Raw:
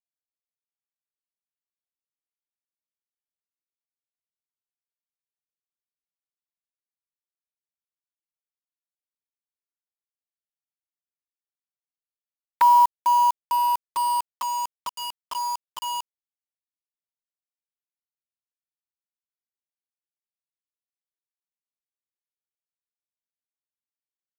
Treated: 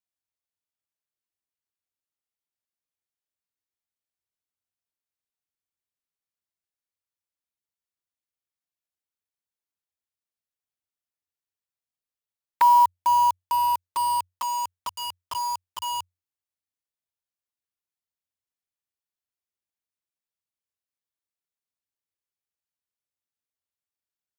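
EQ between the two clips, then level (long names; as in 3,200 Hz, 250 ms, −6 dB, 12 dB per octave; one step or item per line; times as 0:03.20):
parametric band 90 Hz +13 dB 0.28 octaves
dynamic equaliser 1,300 Hz, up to −5 dB, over −37 dBFS, Q 4
0.0 dB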